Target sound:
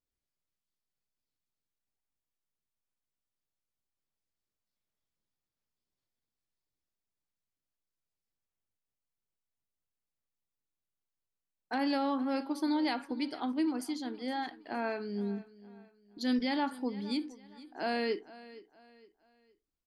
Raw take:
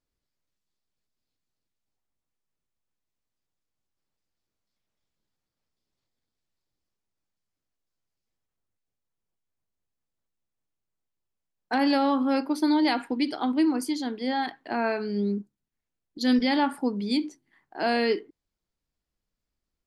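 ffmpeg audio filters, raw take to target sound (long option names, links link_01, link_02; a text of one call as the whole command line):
ffmpeg -i in.wav -af "aecho=1:1:465|930|1395:0.119|0.0428|0.0154,volume=-8dB" out.wav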